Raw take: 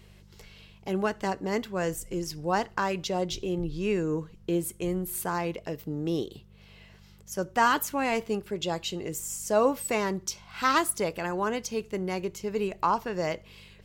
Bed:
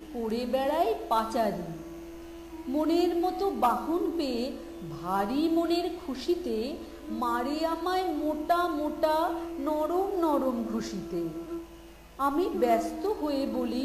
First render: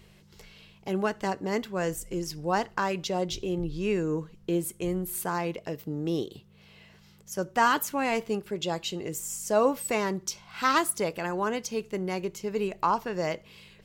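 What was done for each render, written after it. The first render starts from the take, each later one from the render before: de-hum 50 Hz, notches 2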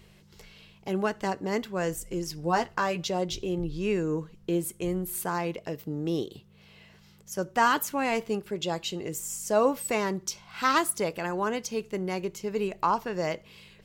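2.42–3.11 doubler 12 ms -6 dB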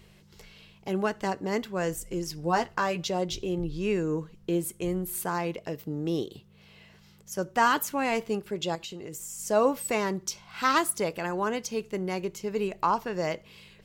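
8.75–9.39 compressor 10:1, threshold -35 dBFS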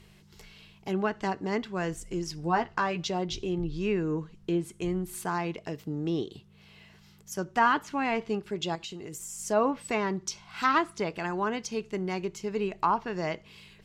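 treble ducked by the level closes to 2700 Hz, closed at -21.5 dBFS; bell 530 Hz -9 dB 0.25 oct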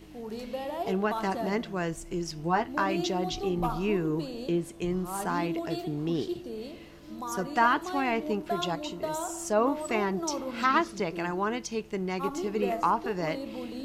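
add bed -7.5 dB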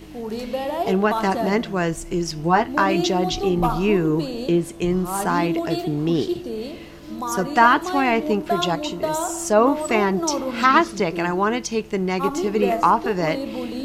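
gain +9 dB

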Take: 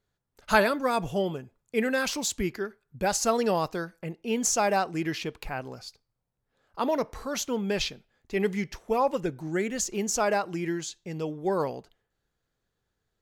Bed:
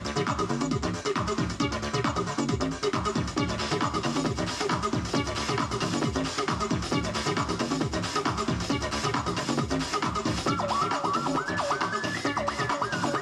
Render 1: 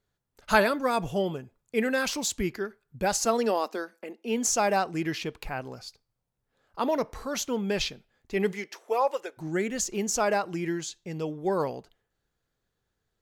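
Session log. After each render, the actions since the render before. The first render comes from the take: 3.25–4.48 elliptic high-pass 220 Hz; 8.51–9.37 HPF 260 Hz -> 550 Hz 24 dB/oct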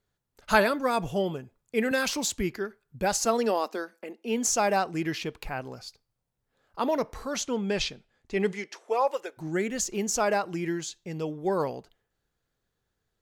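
1.91–2.35 three-band squash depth 40%; 7.36–9 LPF 10000 Hz 24 dB/oct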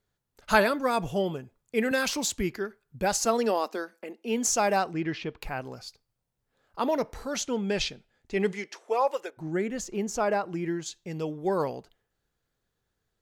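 4.93–5.42 air absorption 180 m; 6.98–8.36 notch 1100 Hz, Q 9; 9.3–10.86 high shelf 2500 Hz -9.5 dB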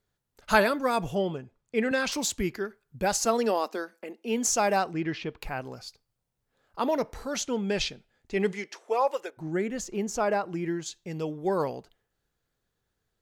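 1.15–2.12 air absorption 67 m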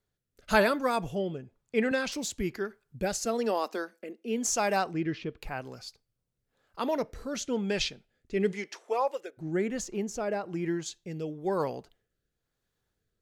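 rotary speaker horn 1 Hz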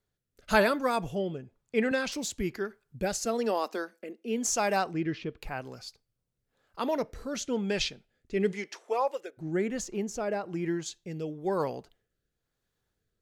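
nothing audible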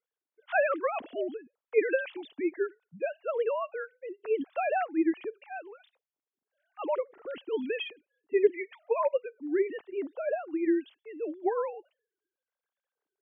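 sine-wave speech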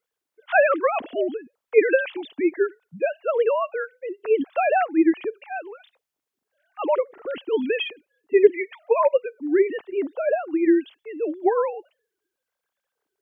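gain +8.5 dB

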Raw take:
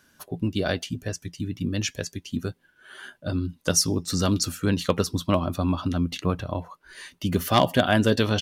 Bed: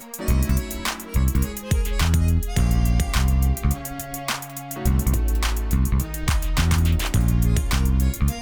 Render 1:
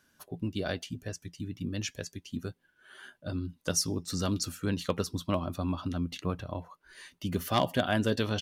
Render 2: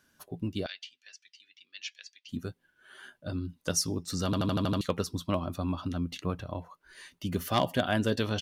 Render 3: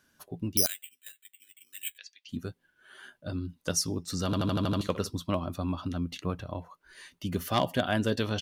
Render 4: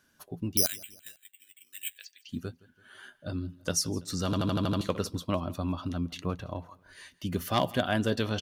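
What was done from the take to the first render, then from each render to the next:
gain -7.5 dB
0.66–2.29 Butterworth band-pass 3200 Hz, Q 1.1; 4.25 stutter in place 0.08 s, 7 plays
0.57–1.98 careless resampling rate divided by 8×, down filtered, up zero stuff; 4.23–5.1 flutter echo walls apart 10.4 m, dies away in 0.24 s
feedback echo 0.166 s, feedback 47%, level -22.5 dB

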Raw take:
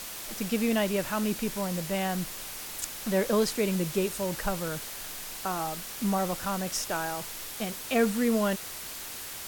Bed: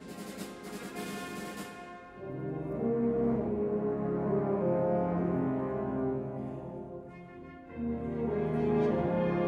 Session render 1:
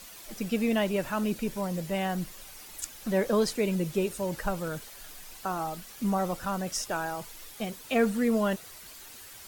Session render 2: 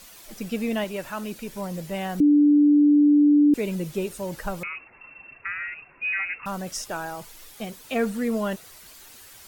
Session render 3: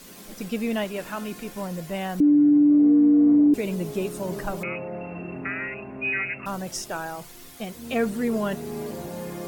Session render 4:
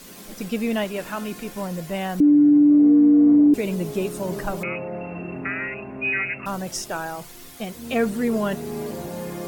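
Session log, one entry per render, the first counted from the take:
denoiser 10 dB, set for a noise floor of -40 dBFS
0.84–1.54 low shelf 430 Hz -6 dB; 2.2–3.54 bleep 293 Hz -13 dBFS; 4.63–6.46 inverted band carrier 2700 Hz
add bed -5 dB
gain +2.5 dB

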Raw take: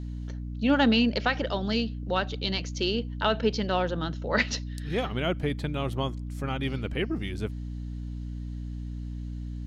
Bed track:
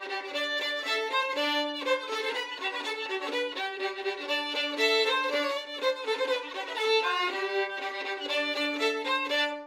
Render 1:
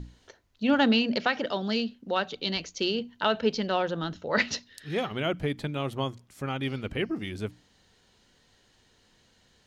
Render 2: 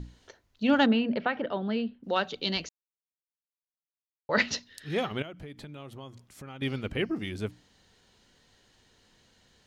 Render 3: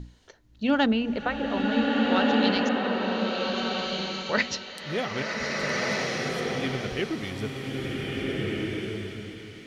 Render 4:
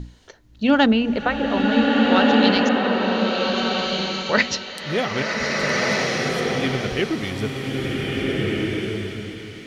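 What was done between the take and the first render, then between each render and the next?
notches 60/120/180/240/300 Hz
0.86–2.04 air absorption 460 m; 2.69–4.29 mute; 5.22–6.62 compressor 4:1, threshold -42 dBFS
thin delay 0.912 s, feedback 59%, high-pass 2100 Hz, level -12.5 dB; bloom reverb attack 1.55 s, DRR -3.5 dB
gain +6.5 dB

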